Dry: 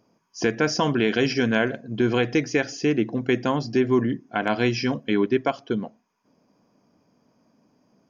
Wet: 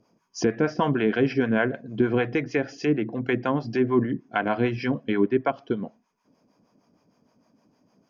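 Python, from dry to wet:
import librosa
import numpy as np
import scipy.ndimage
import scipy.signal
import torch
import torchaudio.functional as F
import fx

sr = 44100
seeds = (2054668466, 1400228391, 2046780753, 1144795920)

y = fx.env_lowpass_down(x, sr, base_hz=2000.0, full_db=-19.5)
y = fx.harmonic_tremolo(y, sr, hz=6.5, depth_pct=70, crossover_hz=530.0)
y = y * librosa.db_to_amplitude(2.5)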